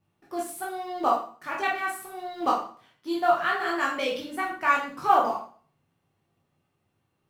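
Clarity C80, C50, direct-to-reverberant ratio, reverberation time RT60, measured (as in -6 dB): 10.0 dB, 5.0 dB, -4.0 dB, 0.45 s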